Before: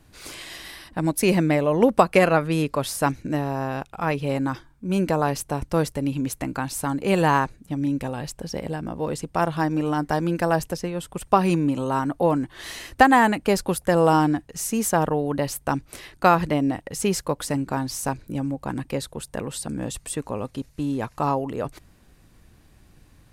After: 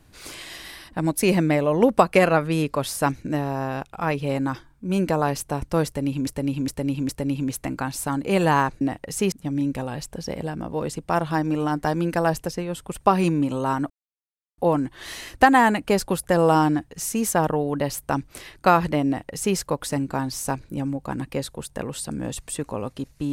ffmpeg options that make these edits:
-filter_complex "[0:a]asplit=7[a][b][c][d][e][f][g];[a]atrim=end=6.272[h];[b]atrim=start=5.858:end=6.272[i];[c]atrim=start=5.858:end=6.272[j];[d]atrim=start=5.858:end=7.582[k];[e]atrim=start=16.638:end=17.152[l];[f]atrim=start=7.578:end=12.16,asetpts=PTS-STARTPTS,afade=t=out:st=4.578:d=0.004:c=hsin,apad=pad_dur=0.68[m];[g]atrim=start=12.16,asetpts=PTS-STARTPTS,afade=t=in:d=0.004:c=hsin[n];[h][i]acrossfade=d=0.004:c1=hsin:c2=hsin[o];[o][j]acrossfade=d=0.004:c1=hsin:c2=hsin[p];[p][k]acrossfade=d=0.004:c1=hsin:c2=hsin[q];[q][l]acrossfade=d=0.004:c1=hsin:c2=hsin[r];[m][n]concat=n=2:v=0:a=1[s];[r][s]acrossfade=d=0.004:c1=hsin:c2=hsin"

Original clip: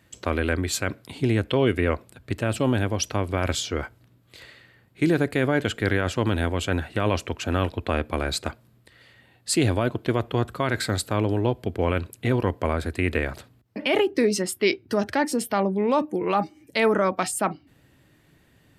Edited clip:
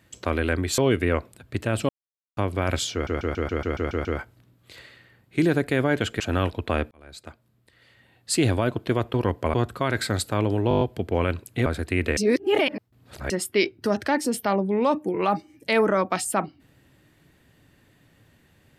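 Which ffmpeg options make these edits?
-filter_complex "[0:a]asplit=25[a][b][c][d][e][f][g][h][i][j][k][l][m][n][o][p][q][r][s][t][u][v][w][x][y];[a]atrim=end=0.782[z];[b]atrim=start=1.538:end=2.65,asetpts=PTS-STARTPTS,afade=t=out:st=1.108:d=0.004:c=hsin[aa];[c]atrim=start=2.65:end=3.13,asetpts=PTS-STARTPTS,volume=0[ab];[d]atrim=start=3.13:end=3.832,asetpts=PTS-STARTPTS,afade=t=in:d=0.004:c=hsin[ac];[e]atrim=start=3.688:end=3.832[ad];[f]atrim=start=3.688:end=3.832[ae];[g]atrim=start=3.688:end=3.832[af];[h]atrim=start=3.688:end=3.832[ag];[i]atrim=start=3.688:end=3.832[ah];[j]atrim=start=3.688:end=3.832[ai];[k]atrim=start=3.688:end=3.832[aj];[l]atrim=start=3.688:end=5.842[ak];[m]atrim=start=7.388:end=8.1,asetpts=PTS-STARTPTS,afade=t=out:st=0.708:d=0.004:c=hsin[al];[n]atrim=start=8.1:end=10.332,asetpts=PTS-STARTPTS,afade=t=in:d=1.5[am];[o]atrim=start=12.328:end=12.732[an];[p]atrim=start=10.328:end=11.502[ao];[q]atrim=start=11.478:end=11.502[ap];[r]atrim=start=11.478:end=11.502[aq];[s]atrim=start=11.478:end=11.502[ar];[t]atrim=start=11.478:end=11.502[as];[u]atrim=start=11.478:end=11.502[at];[v]atrim=start=11.478:end=12.332[au];[w]atrim=start=12.728:end=13.242[av];[x]atrim=start=13.238:end=14.372,asetpts=PTS-STARTPTS,areverse[aw];[y]atrim=start=14.368[ax];[aa][ab][ac]concat=n=3:v=0:a=1[ay];[z][ay]acrossfade=d=0.004:c1=hsin:c2=hsin[az];[az][ad]acrossfade=d=0.004:c1=hsin:c2=hsin[ba];[ba][ae]acrossfade=d=0.004:c1=hsin:c2=hsin[bb];[bb][af]acrossfade=d=0.004:c1=hsin:c2=hsin[bc];[bc][ag]acrossfade=d=0.004:c1=hsin:c2=hsin[bd];[bd][ah]acrossfade=d=0.004:c1=hsin:c2=hsin[be];[be][ai]acrossfade=d=0.004:c1=hsin:c2=hsin[bf];[bf][aj]acrossfade=d=0.004:c1=hsin:c2=hsin[bg];[bg][ak]acrossfade=d=0.004:c1=hsin:c2=hsin[bh];[al][am]concat=n=2:v=0:a=1[bi];[bh][bi]acrossfade=d=0.004:c1=hsin:c2=hsin[bj];[bj][an]acrossfade=d=0.004:c1=hsin:c2=hsin[bk];[bk][ao]acrossfade=d=0.004:c1=hsin:c2=hsin[bl];[bl][ap]acrossfade=d=0.004:c1=hsin:c2=hsin[bm];[bm][aq]acrossfade=d=0.004:c1=hsin:c2=hsin[bn];[bn][ar]acrossfade=d=0.004:c1=hsin:c2=hsin[bo];[bo][as]acrossfade=d=0.004:c1=hsin:c2=hsin[bp];[bp][at]acrossfade=d=0.004:c1=hsin:c2=hsin[bq];[bq][au]acrossfade=d=0.004:c1=hsin:c2=hsin[br];[br][av]acrossfade=d=0.004:c1=hsin:c2=hsin[bs];[bs][aw]acrossfade=d=0.004:c1=hsin:c2=hsin[bt];[bt][ax]acrossfade=d=0.004:c1=hsin:c2=hsin"

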